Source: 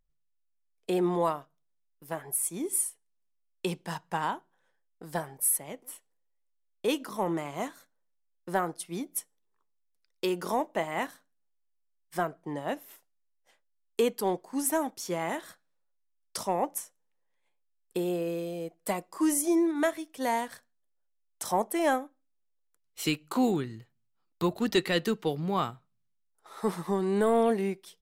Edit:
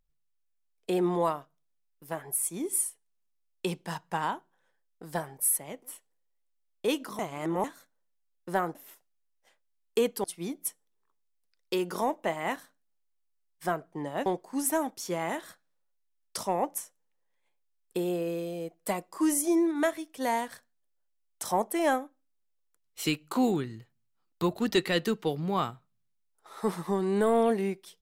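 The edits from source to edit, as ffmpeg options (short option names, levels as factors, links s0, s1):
-filter_complex "[0:a]asplit=6[s0][s1][s2][s3][s4][s5];[s0]atrim=end=7.192[s6];[s1]atrim=start=7.188:end=7.642,asetpts=PTS-STARTPTS,areverse[s7];[s2]atrim=start=7.638:end=8.752[s8];[s3]atrim=start=12.768:end=14.262[s9];[s4]atrim=start=8.748:end=12.772[s10];[s5]atrim=start=14.258[s11];[s6][s7]acrossfade=d=0.004:c1=hsin:c2=hsin[s12];[s12][s8]acrossfade=d=0.004:c1=hsin:c2=hsin[s13];[s13][s9]acrossfade=d=0.004:c1=hsin:c2=hsin[s14];[s14][s10]acrossfade=d=0.004:c1=hsin:c2=hsin[s15];[s15][s11]acrossfade=d=0.004:c1=hsin:c2=hsin"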